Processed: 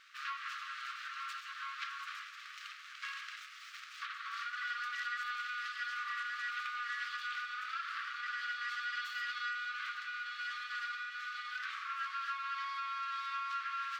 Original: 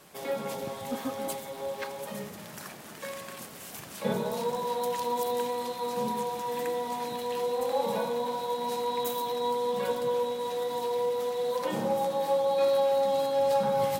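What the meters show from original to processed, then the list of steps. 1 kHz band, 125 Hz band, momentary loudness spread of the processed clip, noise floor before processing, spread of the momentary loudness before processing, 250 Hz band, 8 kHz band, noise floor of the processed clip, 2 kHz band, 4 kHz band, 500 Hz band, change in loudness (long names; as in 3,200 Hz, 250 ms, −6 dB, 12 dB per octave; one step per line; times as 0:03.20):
−9.0 dB, below −40 dB, 7 LU, −45 dBFS, 14 LU, below −40 dB, −15.0 dB, −51 dBFS, +7.5 dB, −4.0 dB, below −40 dB, −9.5 dB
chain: downward compressor, threshold −32 dBFS, peak gain reduction 10.5 dB
full-wave rectification
linear-phase brick-wall high-pass 1,100 Hz
high-frequency loss of the air 200 metres
level +6 dB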